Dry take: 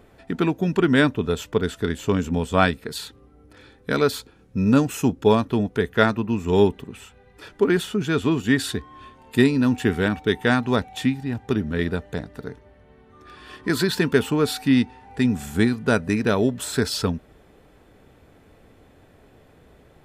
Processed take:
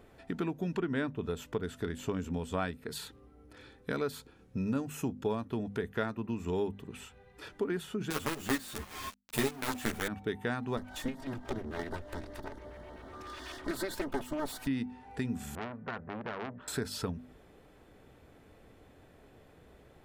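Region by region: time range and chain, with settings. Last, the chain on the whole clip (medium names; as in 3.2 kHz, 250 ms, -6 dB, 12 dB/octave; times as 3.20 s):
0.74–1.17 s: treble shelf 7.6 kHz -10.5 dB + tape noise reduction on one side only encoder only
8.10–10.08 s: treble shelf 2 kHz +7.5 dB + companded quantiser 2-bit + three-phase chorus
10.77–14.67 s: comb filter that takes the minimum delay 3.2 ms + upward compressor, threshold -29 dBFS + LFO notch square 8 Hz 220–2500 Hz
15.55–16.68 s: four-pole ladder low-pass 1.9 kHz, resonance 30% + transformer saturation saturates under 2.4 kHz
whole clip: hum notches 50/100/150/200/250 Hz; dynamic bell 4.5 kHz, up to -5 dB, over -39 dBFS, Q 0.74; compression 2.5:1, threshold -29 dBFS; trim -5 dB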